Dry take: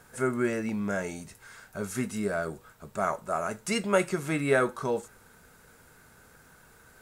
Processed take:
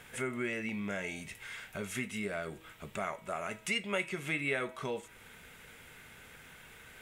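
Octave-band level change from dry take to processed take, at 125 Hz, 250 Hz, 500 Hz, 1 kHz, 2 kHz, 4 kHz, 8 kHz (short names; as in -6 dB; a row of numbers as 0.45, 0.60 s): -8.0, -8.5, -10.0, -9.0, -2.5, 0.0, -6.5 dB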